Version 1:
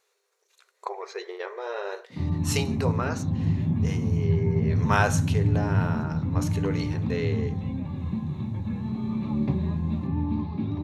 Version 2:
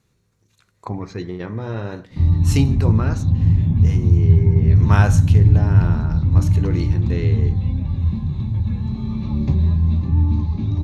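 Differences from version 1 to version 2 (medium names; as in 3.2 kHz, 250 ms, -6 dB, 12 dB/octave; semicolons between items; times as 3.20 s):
speech: remove brick-wall FIR high-pass 370 Hz; background: remove band-pass 190–2800 Hz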